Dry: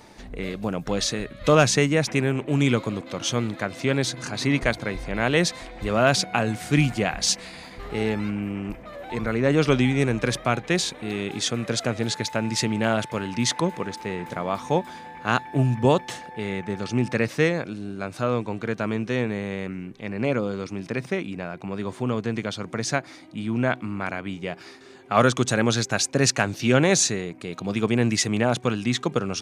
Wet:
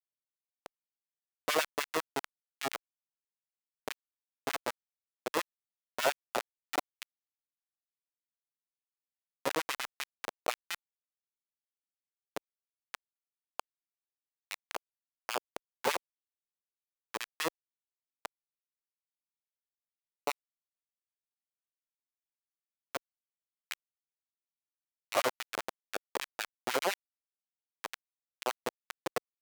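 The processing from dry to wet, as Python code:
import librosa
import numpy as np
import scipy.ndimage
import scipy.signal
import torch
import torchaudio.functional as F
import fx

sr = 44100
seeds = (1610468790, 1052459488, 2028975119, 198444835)

y = fx.brickwall_bandpass(x, sr, low_hz=190.0, high_hz=3300.0)
y = fx.schmitt(y, sr, flips_db=-15.5)
y = fx.filter_lfo_highpass(y, sr, shape='sine', hz=10.0, low_hz=460.0, high_hz=2600.0, q=1.5)
y = y * 10.0 ** (2.0 / 20.0)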